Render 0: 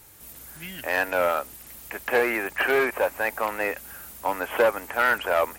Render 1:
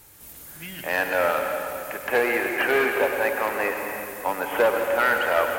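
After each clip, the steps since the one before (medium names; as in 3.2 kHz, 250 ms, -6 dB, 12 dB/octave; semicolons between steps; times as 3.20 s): reverberation RT60 2.7 s, pre-delay 96 ms, DRR 3 dB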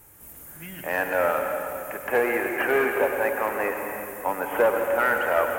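peaking EQ 4.2 kHz -13.5 dB 1.1 oct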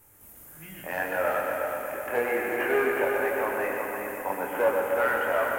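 chorus 0.73 Hz, delay 19.5 ms, depth 5.8 ms; on a send: multi-head delay 122 ms, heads first and third, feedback 59%, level -7 dB; on the sum: trim -2 dB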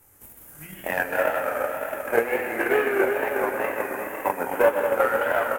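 delay 210 ms -5 dB; transient shaper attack +11 dB, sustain -3 dB; wow and flutter 74 cents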